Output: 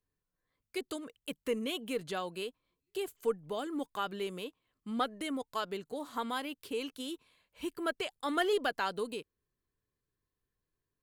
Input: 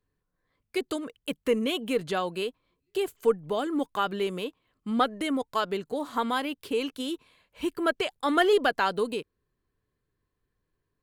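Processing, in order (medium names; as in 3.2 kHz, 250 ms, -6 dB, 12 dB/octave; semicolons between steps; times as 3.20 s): treble shelf 4 kHz +5.5 dB; trim -8.5 dB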